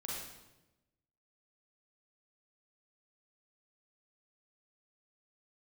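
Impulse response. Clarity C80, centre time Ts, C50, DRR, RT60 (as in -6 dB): 2.5 dB, 77 ms, -2.0 dB, -5.5 dB, 1.0 s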